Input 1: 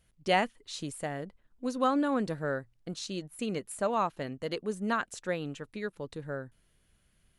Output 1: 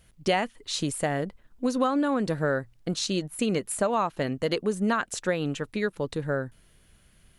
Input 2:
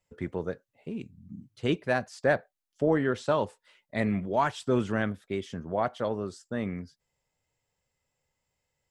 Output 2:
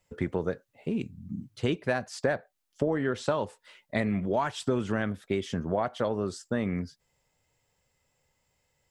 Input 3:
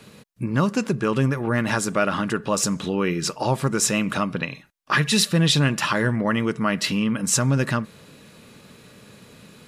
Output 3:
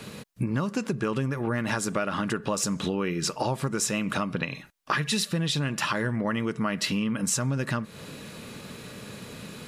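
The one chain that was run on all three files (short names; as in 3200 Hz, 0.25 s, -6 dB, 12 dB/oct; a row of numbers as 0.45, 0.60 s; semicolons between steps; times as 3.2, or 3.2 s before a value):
compressor 6:1, threshold -31 dBFS; normalise peaks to -12 dBFS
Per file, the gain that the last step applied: +10.0, +7.0, +6.0 dB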